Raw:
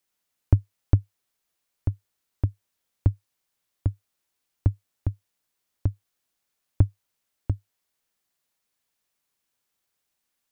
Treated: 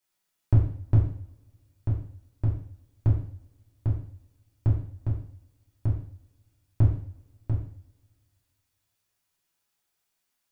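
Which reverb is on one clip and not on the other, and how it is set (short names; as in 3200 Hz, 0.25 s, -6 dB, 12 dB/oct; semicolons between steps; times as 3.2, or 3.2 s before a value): two-slope reverb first 0.54 s, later 2.1 s, from -27 dB, DRR -6 dB; gain -6 dB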